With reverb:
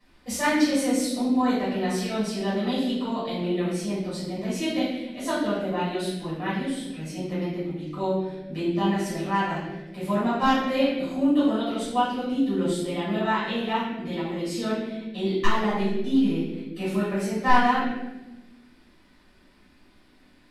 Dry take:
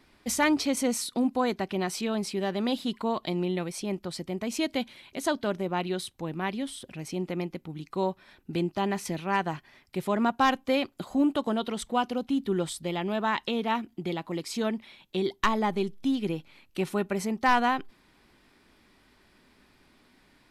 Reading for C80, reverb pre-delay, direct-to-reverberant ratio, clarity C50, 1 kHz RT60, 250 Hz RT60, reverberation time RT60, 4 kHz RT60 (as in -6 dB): 3.5 dB, 6 ms, -12.0 dB, 0.5 dB, 0.90 s, 1.8 s, 1.1 s, 0.80 s